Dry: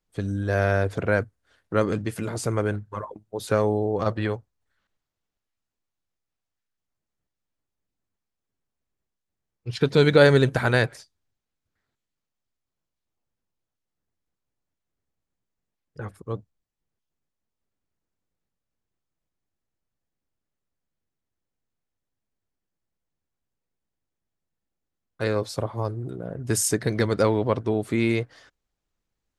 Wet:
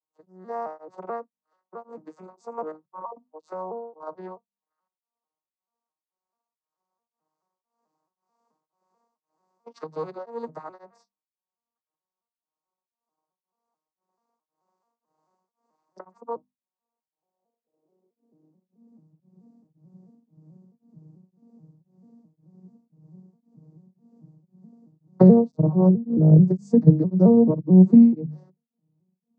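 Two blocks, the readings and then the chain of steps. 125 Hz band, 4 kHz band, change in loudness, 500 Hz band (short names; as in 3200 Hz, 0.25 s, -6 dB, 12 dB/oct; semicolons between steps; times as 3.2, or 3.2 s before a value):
+4.0 dB, under -25 dB, +7.0 dB, -3.0 dB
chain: arpeggiated vocoder minor triad, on D#3, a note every 0.218 s; recorder AGC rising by 6.5 dB/s; tilt shelf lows +9 dB, about 830 Hz; notches 50/100/150/200/250 Hz; in parallel at -5 dB: soft clip -6.5 dBFS, distortion -18 dB; on the sum: band shelf 2200 Hz -14.5 dB; high-pass sweep 1100 Hz -> 150 Hz, 16.82–19.26; beating tremolo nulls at 1.9 Hz; gain -4 dB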